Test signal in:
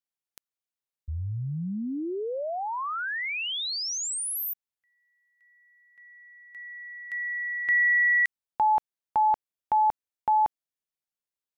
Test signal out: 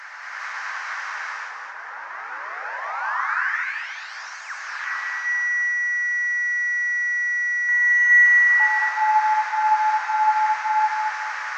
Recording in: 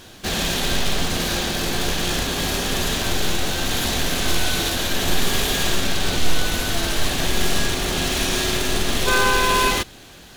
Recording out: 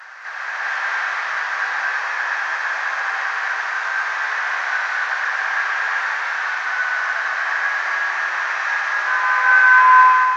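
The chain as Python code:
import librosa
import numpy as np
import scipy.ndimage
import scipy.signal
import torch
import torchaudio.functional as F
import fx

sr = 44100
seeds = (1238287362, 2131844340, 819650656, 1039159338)

y = fx.delta_mod(x, sr, bps=32000, step_db=-25.0)
y = scipy.signal.sosfilt(scipy.signal.butter(4, 870.0, 'highpass', fs=sr, output='sos'), y)
y = fx.high_shelf_res(y, sr, hz=2400.0, db=-12.0, q=3.0)
y = fx.echo_feedback(y, sr, ms=221, feedback_pct=37, wet_db=-5.5)
y = fx.rev_gated(y, sr, seeds[0], gate_ms=450, shape='rising', drr_db=-7.5)
y = y * librosa.db_to_amplitude(-5.0)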